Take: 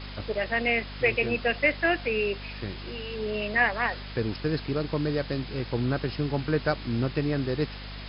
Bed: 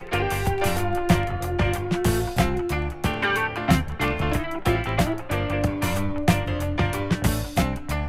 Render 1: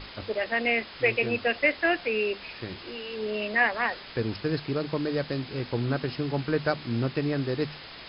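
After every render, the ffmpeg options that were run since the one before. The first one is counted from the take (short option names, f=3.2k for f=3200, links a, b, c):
-af "bandreject=f=50:t=h:w=6,bandreject=f=100:t=h:w=6,bandreject=f=150:t=h:w=6,bandreject=f=200:t=h:w=6,bandreject=f=250:t=h:w=6"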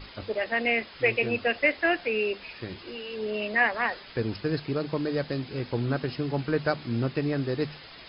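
-af "afftdn=nr=6:nf=-44"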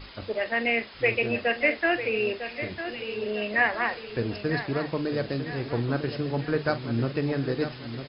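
-filter_complex "[0:a]asplit=2[a][b];[b]adelay=43,volume=-13dB[c];[a][c]amix=inputs=2:normalize=0,asplit=2[d][e];[e]adelay=951,lowpass=f=3.5k:p=1,volume=-10dB,asplit=2[f][g];[g]adelay=951,lowpass=f=3.5k:p=1,volume=0.5,asplit=2[h][i];[i]adelay=951,lowpass=f=3.5k:p=1,volume=0.5,asplit=2[j][k];[k]adelay=951,lowpass=f=3.5k:p=1,volume=0.5,asplit=2[l][m];[m]adelay=951,lowpass=f=3.5k:p=1,volume=0.5[n];[d][f][h][j][l][n]amix=inputs=6:normalize=0"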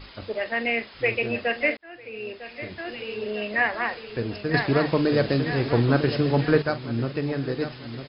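-filter_complex "[0:a]asplit=4[a][b][c][d];[a]atrim=end=1.77,asetpts=PTS-STARTPTS,afade=t=out:st=1.766:d=0.004:c=hsin[e];[b]atrim=start=1.77:end=4.542,asetpts=PTS-STARTPTS,afade=t=in:d=1.19[f];[c]atrim=start=4.538:end=6.622,asetpts=PTS-STARTPTS,volume=7dB[g];[d]atrim=start=6.618[h];[e][f]concat=n=2:v=0:a=1[i];[i][g]acrossfade=d=0.004:c1=hsin:c2=hsin[j];[j][h]acrossfade=d=0.004:c1=hsin:c2=hsin"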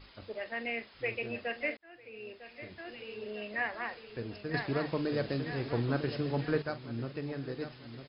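-af "volume=-11dB"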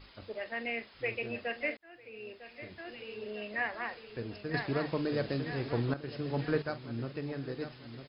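-filter_complex "[0:a]asplit=2[a][b];[a]atrim=end=5.94,asetpts=PTS-STARTPTS,afade=t=out:st=5.936:d=0.004:c=hsin:silence=0.237137[c];[b]atrim=start=5.94,asetpts=PTS-STARTPTS,afade=t=in:d=0.48:silence=0.237137[d];[c][d]concat=n=2:v=0:a=1"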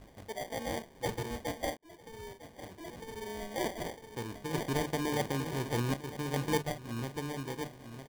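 -af "acrusher=samples=33:mix=1:aa=0.000001"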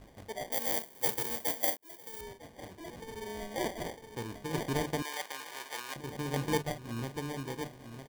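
-filter_complex "[0:a]asettb=1/sr,asplit=3[a][b][c];[a]atrim=end=0.524[d];[b]atrim=start=0.52:end=2.21,asetpts=PTS-STARTPTS,afade=t=in:d=0.004:c=qsin,afade=t=out:st=1.686:d=0.004:c=qsin,aemphasis=mode=production:type=bsi[e];[c]atrim=start=2.206[f];[d][e]acrossfade=d=0.004:c1=hsin:c2=qsin[g];[g][f]acrossfade=d=0.004:c1=qsin:c2=hsin,asettb=1/sr,asplit=3[h][i][j];[h]atrim=end=5.024[k];[i]atrim=start=5.02:end=5.96,asetpts=PTS-STARTPTS,afade=t=in:d=0.004:c=qsin,afade=t=out:st=0.936:d=0.004:c=qsin,highpass=1k[l];[j]atrim=start=5.956[m];[k][l]acrossfade=d=0.004:c1=hsin:c2=qsin[n];[n][m]acrossfade=d=0.004:c1=qsin:c2=hsin"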